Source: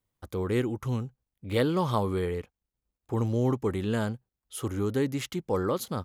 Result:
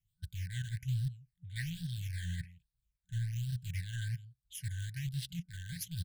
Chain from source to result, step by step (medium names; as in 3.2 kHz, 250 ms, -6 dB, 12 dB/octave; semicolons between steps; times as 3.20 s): delay 166 ms -20.5 dB; reverse; compression 12:1, threshold -34 dBFS, peak gain reduction 14 dB; reverse; rotary cabinet horn 6.7 Hz, later 0.8 Hz, at 2.53 s; in parallel at -8 dB: word length cut 6-bit, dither none; on the sum: phase shifter stages 8, 1.2 Hz, lowest notch 680–2200 Hz; FFT band-reject 180–1500 Hz; trim +3 dB